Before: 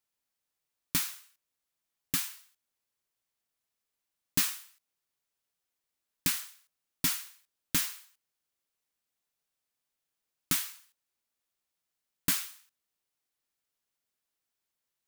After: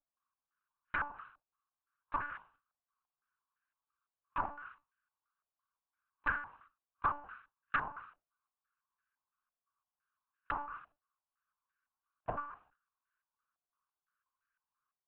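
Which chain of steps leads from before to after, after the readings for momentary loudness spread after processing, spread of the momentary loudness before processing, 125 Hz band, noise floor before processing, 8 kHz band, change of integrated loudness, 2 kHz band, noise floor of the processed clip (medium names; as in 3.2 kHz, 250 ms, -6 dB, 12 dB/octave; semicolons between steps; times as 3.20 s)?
17 LU, 15 LU, -10.0 dB, under -85 dBFS, under -40 dB, -9.0 dB, +1.5 dB, under -85 dBFS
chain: comb filter that takes the minimum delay 0.72 ms; low-pass that closes with the level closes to 780 Hz, closed at -31.5 dBFS; Chebyshev band-stop 110–790 Hz, order 5; hum notches 50/100 Hz; spectral noise reduction 11 dB; bass shelf 140 Hz -10.5 dB; peak limiter -28.5 dBFS, peak gain reduction 9 dB; monotone LPC vocoder at 8 kHz 290 Hz; step-sequenced low-pass 5.9 Hz 690–1600 Hz; trim +12.5 dB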